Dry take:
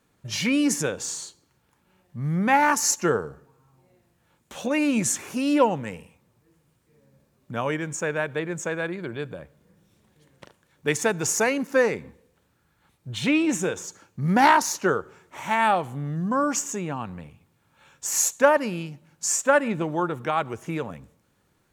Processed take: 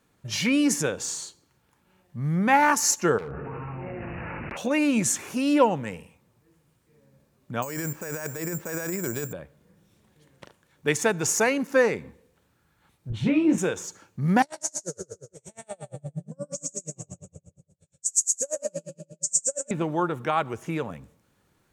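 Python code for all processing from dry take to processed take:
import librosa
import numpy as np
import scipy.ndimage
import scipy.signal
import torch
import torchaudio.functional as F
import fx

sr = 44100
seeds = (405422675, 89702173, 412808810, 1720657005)

y = fx.chain(x, sr, fx.resample_bad(factor=8, down='none', up='filtered'),
    fx.clip_hard(threshold_db=-33.5),
    fx.env_flatten(amount_pct=100), at=(3.18, 4.57))
y = fx.chain(y, sr, fx.resample_bad(factor=6, down='filtered', up='zero_stuff'),
    fx.bass_treble(bass_db=0, treble_db=-14),
    fx.over_compress(threshold_db=-31.0, ratio=-1.0), at=(7.62, 9.33))
y = fx.chain(y, sr, fx.tilt_eq(slope=-3.5),
    fx.detune_double(cents=60), at=(13.1, 13.58))
y = fx.chain(y, sr, fx.curve_eq(hz=(150.0, 240.0, 590.0, 910.0, 3000.0, 8300.0, 14000.0), db=(0, -17, -3, -28, -18, 10, -19)),
    fx.echo_split(split_hz=600.0, low_ms=154, high_ms=110, feedback_pct=52, wet_db=-3),
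    fx.tremolo_db(hz=8.5, depth_db=37), at=(14.42, 19.71))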